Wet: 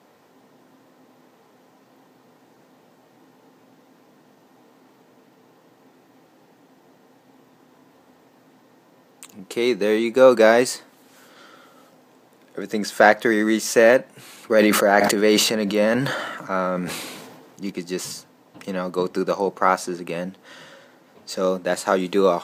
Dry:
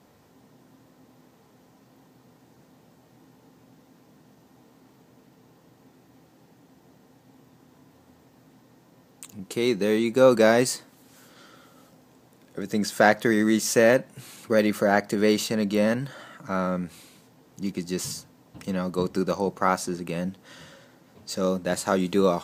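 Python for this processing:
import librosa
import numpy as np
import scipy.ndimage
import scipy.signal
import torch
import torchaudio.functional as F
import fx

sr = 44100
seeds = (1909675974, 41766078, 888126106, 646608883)

y = scipy.signal.sosfilt(scipy.signal.butter(2, 140.0, 'highpass', fs=sr, output='sos'), x)
y = fx.bass_treble(y, sr, bass_db=-8, treble_db=-5)
y = fx.sustainer(y, sr, db_per_s=35.0, at=(14.56, 17.7))
y = F.gain(torch.from_numpy(y), 5.0).numpy()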